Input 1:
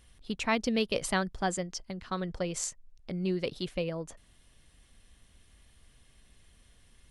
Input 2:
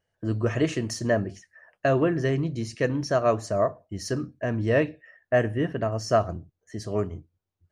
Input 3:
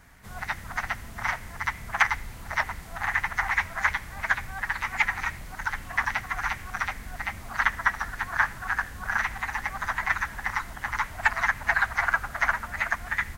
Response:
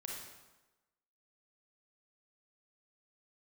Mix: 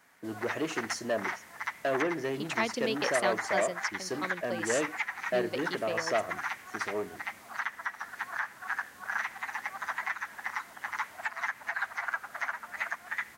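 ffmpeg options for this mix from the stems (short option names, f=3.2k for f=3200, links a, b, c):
-filter_complex "[0:a]adelay=2100,volume=-2dB[a];[1:a]asoftclip=type=tanh:threshold=-20dB,volume=-3dB,asplit=2[b][c];[2:a]alimiter=limit=-14dB:level=0:latency=1:release=289,volume=-5.5dB[d];[c]apad=whole_len=405806[e];[a][e]sidechaingate=range=-33dB:threshold=-54dB:ratio=16:detection=peak[f];[f][b][d]amix=inputs=3:normalize=0,highpass=300"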